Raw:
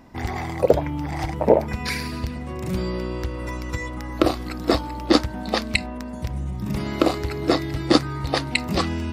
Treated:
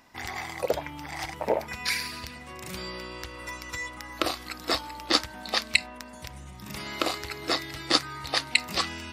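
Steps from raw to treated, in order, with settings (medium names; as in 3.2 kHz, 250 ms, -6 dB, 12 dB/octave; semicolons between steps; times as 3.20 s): tilt shelf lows -9.5 dB, about 730 Hz; trim -7.5 dB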